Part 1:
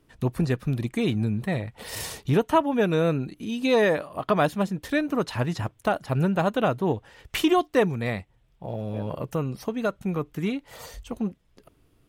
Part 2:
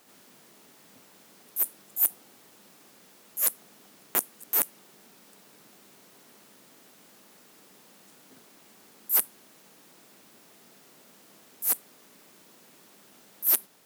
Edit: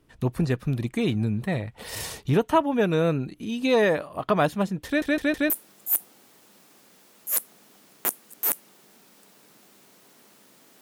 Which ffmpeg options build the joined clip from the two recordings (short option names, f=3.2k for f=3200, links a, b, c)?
-filter_complex "[0:a]apad=whole_dur=10.81,atrim=end=10.81,asplit=4[a][b][c][d];[a]atrim=end=5.022[e];[b]atrim=start=4.858:end=5.022[f];[c]atrim=start=4.858:end=5.022[g];[d]atrim=start=4.858:end=5.022[h];[1:a]atrim=start=1.598:end=6.91[i];[e][f]acrossfade=d=0.004:c1=hsin:c2=hsin[j];[j][g]acrossfade=d=0.004:c1=hsin:c2=hsin[k];[k][h]acrossfade=d=0.004:c1=hsin:c2=hsin[l];[l][i]acrossfade=d=0.004:c1=hsin:c2=hsin"